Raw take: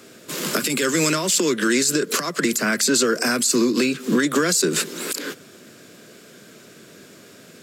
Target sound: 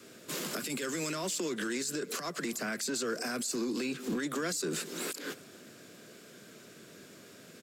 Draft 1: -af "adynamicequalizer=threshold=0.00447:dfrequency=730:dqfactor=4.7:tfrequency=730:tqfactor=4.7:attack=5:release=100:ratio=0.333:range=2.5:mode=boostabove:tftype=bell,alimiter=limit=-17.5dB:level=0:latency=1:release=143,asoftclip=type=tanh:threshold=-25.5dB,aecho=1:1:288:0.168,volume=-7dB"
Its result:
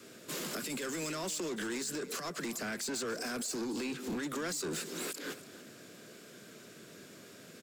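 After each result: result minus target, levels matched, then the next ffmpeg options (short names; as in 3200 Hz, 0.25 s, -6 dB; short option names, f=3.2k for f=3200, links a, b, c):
soft clip: distortion +13 dB; echo-to-direct +7.5 dB
-af "adynamicequalizer=threshold=0.00447:dfrequency=730:dqfactor=4.7:tfrequency=730:tqfactor=4.7:attack=5:release=100:ratio=0.333:range=2.5:mode=boostabove:tftype=bell,alimiter=limit=-17.5dB:level=0:latency=1:release=143,asoftclip=type=tanh:threshold=-16.5dB,aecho=1:1:288:0.168,volume=-7dB"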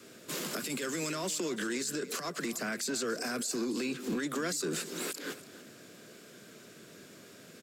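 echo-to-direct +7.5 dB
-af "adynamicequalizer=threshold=0.00447:dfrequency=730:dqfactor=4.7:tfrequency=730:tqfactor=4.7:attack=5:release=100:ratio=0.333:range=2.5:mode=boostabove:tftype=bell,alimiter=limit=-17.5dB:level=0:latency=1:release=143,asoftclip=type=tanh:threshold=-16.5dB,aecho=1:1:288:0.0708,volume=-7dB"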